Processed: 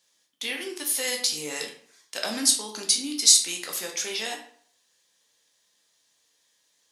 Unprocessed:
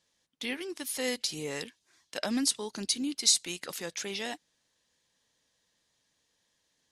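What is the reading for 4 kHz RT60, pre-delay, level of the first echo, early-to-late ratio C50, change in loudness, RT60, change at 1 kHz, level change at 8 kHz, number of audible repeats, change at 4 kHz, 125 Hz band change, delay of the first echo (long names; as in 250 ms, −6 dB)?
0.40 s, 10 ms, no echo audible, 7.5 dB, +7.5 dB, 0.55 s, +4.0 dB, +9.5 dB, no echo audible, +7.0 dB, can't be measured, no echo audible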